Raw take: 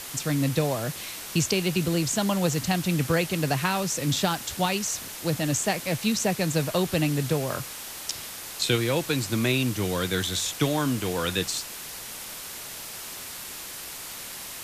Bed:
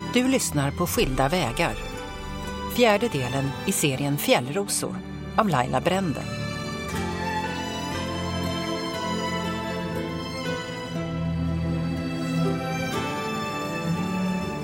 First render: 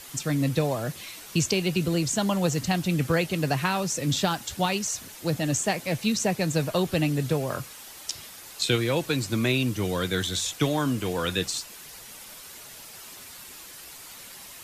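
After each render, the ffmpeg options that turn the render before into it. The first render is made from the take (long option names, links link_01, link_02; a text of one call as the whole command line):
ffmpeg -i in.wav -af "afftdn=noise_reduction=8:noise_floor=-39" out.wav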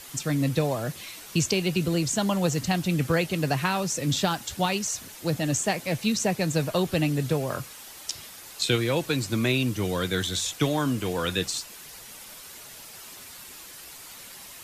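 ffmpeg -i in.wav -af anull out.wav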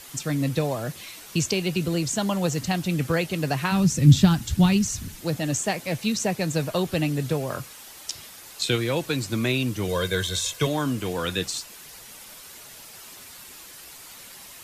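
ffmpeg -i in.wav -filter_complex "[0:a]asplit=3[link_01][link_02][link_03];[link_01]afade=type=out:start_time=3.71:duration=0.02[link_04];[link_02]asubboost=boost=11:cutoff=180,afade=type=in:start_time=3.71:duration=0.02,afade=type=out:start_time=5.2:duration=0.02[link_05];[link_03]afade=type=in:start_time=5.2:duration=0.02[link_06];[link_04][link_05][link_06]amix=inputs=3:normalize=0,asettb=1/sr,asplit=3[link_07][link_08][link_09];[link_07]atrim=end=9.884[link_10];[link_08]atrim=start=9.88:end=10.67,asetpts=PTS-STARTPTS,afade=type=in:duration=0.004:curve=qsin,afade=type=out:start_time=0.786:duration=0.004:curve=qsin,aecho=1:1:1.9:0.68,atrim=end_sample=34839[link_11];[link_09]atrim=start=10.666[link_12];[link_10][link_11]acrossfade=duration=0.004:curve1=hsin:curve2=qsin[link_13];[link_13][link_12]acrossfade=duration=0.004:curve1=qsin:curve2=hsin" out.wav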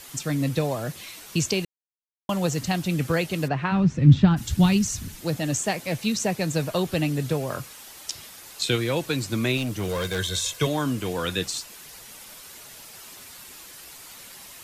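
ffmpeg -i in.wav -filter_complex "[0:a]asplit=3[link_01][link_02][link_03];[link_01]afade=type=out:start_time=3.47:duration=0.02[link_04];[link_02]lowpass=2300,afade=type=in:start_time=3.47:duration=0.02,afade=type=out:start_time=4.36:duration=0.02[link_05];[link_03]afade=type=in:start_time=4.36:duration=0.02[link_06];[link_04][link_05][link_06]amix=inputs=3:normalize=0,asettb=1/sr,asplit=3[link_07][link_08][link_09];[link_07]atrim=end=9.574[link_10];[link_08]atrim=start=9.57:end=10.19,asetpts=PTS-STARTPTS,afade=type=in:duration=0.004:curve=qsin,afade=type=out:start_time=0.616:duration=0.004:curve=qsin,volume=23.5dB,asoftclip=hard,volume=-23.5dB[link_11];[link_09]atrim=start=10.186[link_12];[link_10][link_11]acrossfade=duration=0.004:curve1=hsin:curve2=qsin[link_13];[link_13][link_12]acrossfade=duration=0.004:curve1=qsin:curve2=hsin,asplit=3[link_14][link_15][link_16];[link_14]atrim=end=1.65,asetpts=PTS-STARTPTS,afade=type=out:start_time=1.646:duration=0.004:curve=hsin[link_17];[link_15]atrim=start=1.65:end=2.29,asetpts=PTS-STARTPTS,volume=0[link_18];[link_16]atrim=start=2.29,asetpts=PTS-STARTPTS,afade=type=in:duration=0.004:curve=hsin[link_19];[link_17][link_18][link_19]concat=n=3:v=0:a=1" out.wav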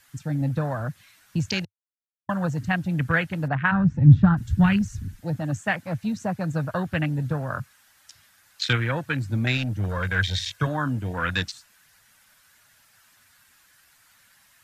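ffmpeg -i in.wav -af "afwtdn=0.0282,equalizer=frequency=100:width_type=o:width=0.67:gain=7,equalizer=frequency=400:width_type=o:width=0.67:gain=-11,equalizer=frequency=1600:width_type=o:width=0.67:gain=11" out.wav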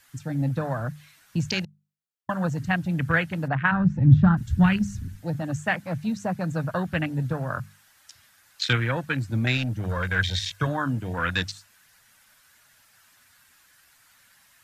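ffmpeg -i in.wav -af "bandreject=frequency=50:width_type=h:width=6,bandreject=frequency=100:width_type=h:width=6,bandreject=frequency=150:width_type=h:width=6,bandreject=frequency=200:width_type=h:width=6" out.wav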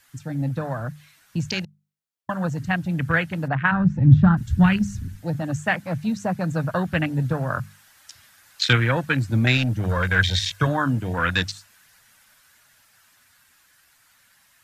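ffmpeg -i in.wav -af "dynaudnorm=framelen=200:gausssize=31:maxgain=6dB" out.wav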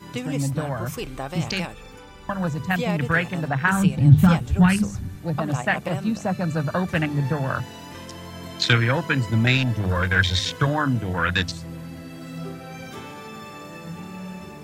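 ffmpeg -i in.wav -i bed.wav -filter_complex "[1:a]volume=-9.5dB[link_01];[0:a][link_01]amix=inputs=2:normalize=0" out.wav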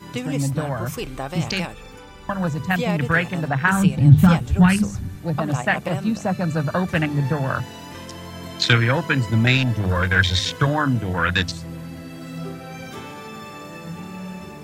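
ffmpeg -i in.wav -af "volume=2dB,alimiter=limit=-1dB:level=0:latency=1" out.wav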